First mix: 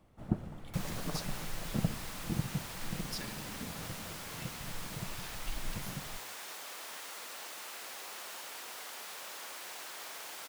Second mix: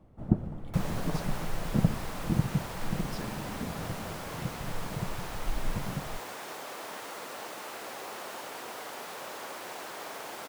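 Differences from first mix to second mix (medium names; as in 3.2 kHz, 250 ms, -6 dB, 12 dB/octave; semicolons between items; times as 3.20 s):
second sound +6.0 dB; master: add tilt shelf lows +7.5 dB, about 1.3 kHz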